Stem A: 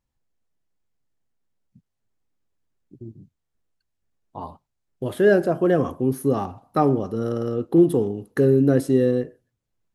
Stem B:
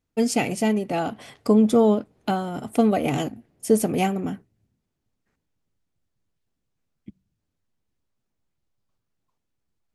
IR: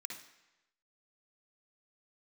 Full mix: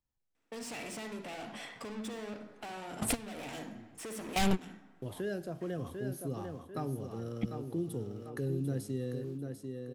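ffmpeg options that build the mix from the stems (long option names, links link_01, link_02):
-filter_complex "[0:a]volume=-9.5dB,asplit=3[link_01][link_02][link_03];[link_02]volume=-8dB[link_04];[1:a]asplit=2[link_05][link_06];[link_06]highpass=frequency=720:poles=1,volume=37dB,asoftclip=type=tanh:threshold=-6.5dB[link_07];[link_05][link_07]amix=inputs=2:normalize=0,lowpass=frequency=1500:poles=1,volume=-6dB,adelay=350,volume=-1.5dB,asplit=2[link_08][link_09];[link_09]volume=-20dB[link_10];[link_03]apad=whole_len=453986[link_11];[link_08][link_11]sidechaingate=range=-23dB:threshold=-49dB:ratio=16:detection=peak[link_12];[2:a]atrim=start_sample=2205[link_13];[link_10][link_13]afir=irnorm=-1:irlink=0[link_14];[link_04]aecho=0:1:745|1490|2235|2980:1|0.27|0.0729|0.0197[link_15];[link_01][link_12][link_14][link_15]amix=inputs=4:normalize=0,acrossover=split=150|3000[link_16][link_17][link_18];[link_17]acompressor=threshold=-46dB:ratio=2[link_19];[link_16][link_19][link_18]amix=inputs=3:normalize=0"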